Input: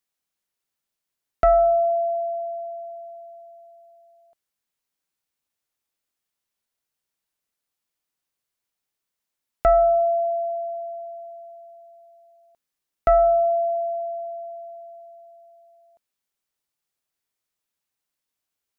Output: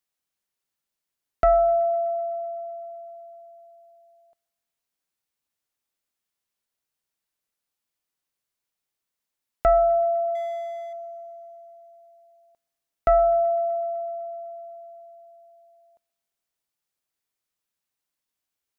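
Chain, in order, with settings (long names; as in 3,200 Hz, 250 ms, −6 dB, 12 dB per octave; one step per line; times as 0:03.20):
0:10.35–0:10.93: running median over 25 samples
feedback echo with a high-pass in the loop 126 ms, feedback 80%, high-pass 640 Hz, level −22 dB
level −1.5 dB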